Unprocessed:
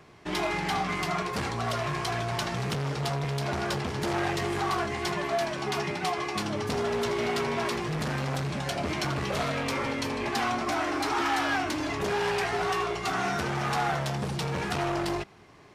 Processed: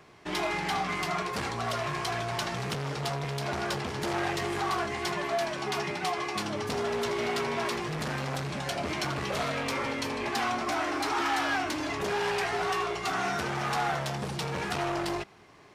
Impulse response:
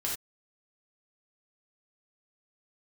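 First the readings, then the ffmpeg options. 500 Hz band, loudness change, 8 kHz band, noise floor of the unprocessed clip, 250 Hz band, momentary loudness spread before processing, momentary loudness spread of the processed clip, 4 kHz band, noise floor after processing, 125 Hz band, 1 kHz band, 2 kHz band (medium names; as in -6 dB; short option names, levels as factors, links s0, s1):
-1.5 dB, -1.5 dB, -0.5 dB, -36 dBFS, -3.0 dB, 3 LU, 4 LU, -0.5 dB, -38 dBFS, -4.0 dB, -1.0 dB, -0.5 dB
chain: -af "lowshelf=f=260:g=-5,asoftclip=type=tanh:threshold=0.119"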